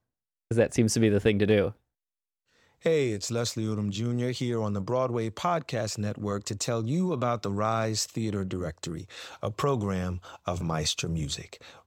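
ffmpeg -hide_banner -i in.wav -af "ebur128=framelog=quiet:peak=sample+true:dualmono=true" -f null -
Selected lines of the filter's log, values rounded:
Integrated loudness:
  I:         -25.6 LUFS
  Threshold: -35.9 LUFS
Loudness range:
  LRA:         4.1 LU
  Threshold: -46.5 LUFS
  LRA low:   -28.2 LUFS
  LRA high:  -24.1 LUFS
Sample peak:
  Peak:      -10.1 dBFS
True peak:
  Peak:      -10.1 dBFS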